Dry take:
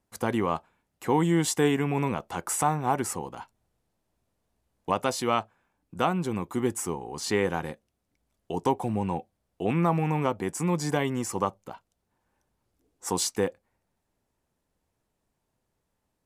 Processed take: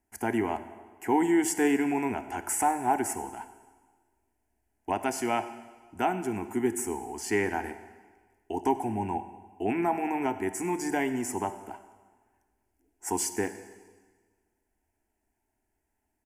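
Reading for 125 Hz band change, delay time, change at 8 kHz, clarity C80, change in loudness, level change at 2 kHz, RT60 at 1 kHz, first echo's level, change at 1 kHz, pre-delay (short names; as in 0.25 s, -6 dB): -11.5 dB, 98 ms, -1.0 dB, 13.0 dB, -1.5 dB, +0.5 dB, 1.4 s, -20.0 dB, -0.5 dB, 21 ms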